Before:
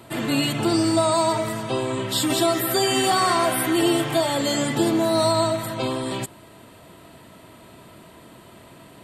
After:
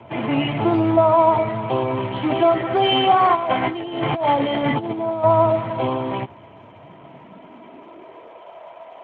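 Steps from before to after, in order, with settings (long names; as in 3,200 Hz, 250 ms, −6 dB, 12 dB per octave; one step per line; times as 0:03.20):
0:03.35–0:05.24: compressor whose output falls as the input rises −24 dBFS, ratio −0.5
high-pass filter sweep 85 Hz → 610 Hz, 0:06.56–0:08.57
Chebyshev low-pass with heavy ripple 3,200 Hz, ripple 9 dB
level +8 dB
Speex 15 kbit/s 32,000 Hz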